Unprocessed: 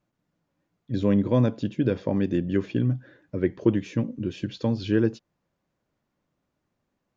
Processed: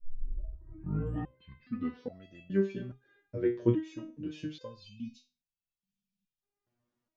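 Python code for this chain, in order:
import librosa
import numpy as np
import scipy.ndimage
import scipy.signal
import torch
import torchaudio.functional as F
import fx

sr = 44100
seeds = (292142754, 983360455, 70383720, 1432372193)

y = fx.tape_start_head(x, sr, length_s=2.31)
y = fx.spec_erase(y, sr, start_s=4.8, length_s=1.63, low_hz=250.0, high_hz=2200.0)
y = fx.resonator_held(y, sr, hz=2.4, low_hz=120.0, high_hz=660.0)
y = F.gain(torch.from_numpy(y), 3.5).numpy()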